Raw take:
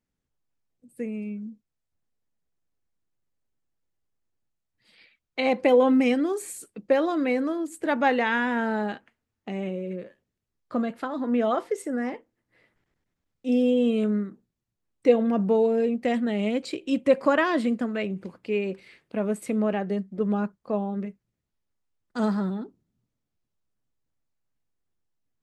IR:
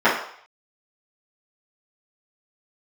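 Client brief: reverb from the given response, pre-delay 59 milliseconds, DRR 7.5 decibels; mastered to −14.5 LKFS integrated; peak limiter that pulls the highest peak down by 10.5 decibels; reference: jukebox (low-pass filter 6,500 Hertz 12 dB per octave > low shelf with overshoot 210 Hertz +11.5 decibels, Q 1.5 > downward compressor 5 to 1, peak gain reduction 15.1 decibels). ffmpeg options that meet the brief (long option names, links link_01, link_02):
-filter_complex "[0:a]alimiter=limit=-18dB:level=0:latency=1,asplit=2[link_01][link_02];[1:a]atrim=start_sample=2205,adelay=59[link_03];[link_02][link_03]afir=irnorm=-1:irlink=0,volume=-31dB[link_04];[link_01][link_04]amix=inputs=2:normalize=0,lowpass=6500,lowshelf=frequency=210:width_type=q:width=1.5:gain=11.5,acompressor=threshold=-32dB:ratio=5,volume=21dB"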